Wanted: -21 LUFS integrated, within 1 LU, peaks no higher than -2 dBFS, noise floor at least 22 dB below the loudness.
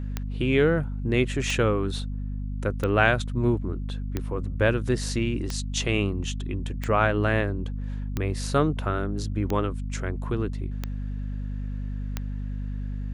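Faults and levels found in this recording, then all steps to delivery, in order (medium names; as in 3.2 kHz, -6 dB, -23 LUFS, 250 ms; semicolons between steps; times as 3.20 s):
clicks found 10; hum 50 Hz; highest harmonic 250 Hz; hum level -28 dBFS; loudness -27.0 LUFS; peak level -6.0 dBFS; loudness target -21.0 LUFS
-> de-click; de-hum 50 Hz, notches 5; trim +6 dB; peak limiter -2 dBFS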